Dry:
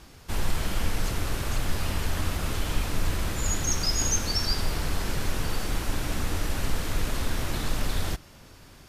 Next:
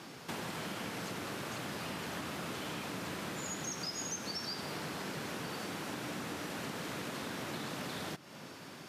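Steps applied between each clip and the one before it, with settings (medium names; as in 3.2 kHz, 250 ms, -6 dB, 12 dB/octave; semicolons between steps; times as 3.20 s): high-pass 150 Hz 24 dB/octave; treble shelf 5.9 kHz -7.5 dB; compression 4:1, threshold -44 dBFS, peak gain reduction 15 dB; trim +4.5 dB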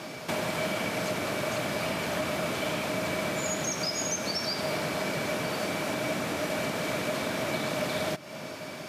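small resonant body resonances 620/2300 Hz, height 14 dB, ringing for 65 ms; trim +8 dB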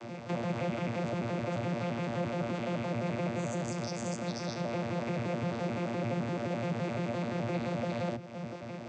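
vocoder on a broken chord bare fifth, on A#2, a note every 86 ms; in parallel at -2 dB: peak limiter -27.5 dBFS, peak gain reduction 7.5 dB; on the sum: trim -5.5 dB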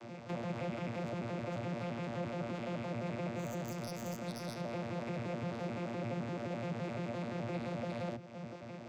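tracing distortion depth 0.049 ms; trim -5.5 dB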